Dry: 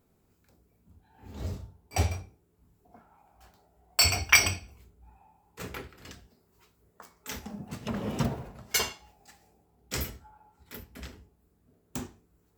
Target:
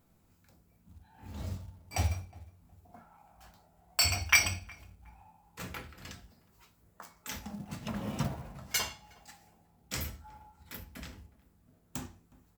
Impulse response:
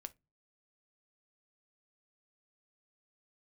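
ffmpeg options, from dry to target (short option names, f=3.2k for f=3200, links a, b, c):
-filter_complex "[0:a]asplit=2[a][b];[b]acompressor=threshold=-44dB:ratio=6,volume=2dB[c];[a][c]amix=inputs=2:normalize=0,asplit=2[d][e];[e]adelay=364,lowpass=f=1.2k:p=1,volume=-21dB,asplit=2[f][g];[g]adelay=364,lowpass=f=1.2k:p=1,volume=0.32[h];[d][f][h]amix=inputs=3:normalize=0[i];[1:a]atrim=start_sample=2205[j];[i][j]afir=irnorm=-1:irlink=0,acrusher=bits=6:mode=log:mix=0:aa=0.000001,equalizer=f=410:t=o:w=0.51:g=-9"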